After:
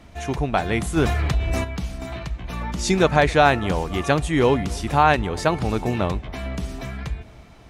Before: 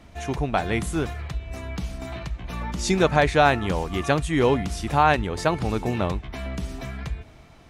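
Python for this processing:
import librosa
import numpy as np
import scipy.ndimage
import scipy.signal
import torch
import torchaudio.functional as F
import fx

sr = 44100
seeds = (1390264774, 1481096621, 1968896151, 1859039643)

p1 = x + fx.echo_bbd(x, sr, ms=265, stages=2048, feedback_pct=67, wet_db=-24, dry=0)
p2 = fx.env_flatten(p1, sr, amount_pct=50, at=(0.96, 1.63), fade=0.02)
y = p2 * librosa.db_to_amplitude(2.0)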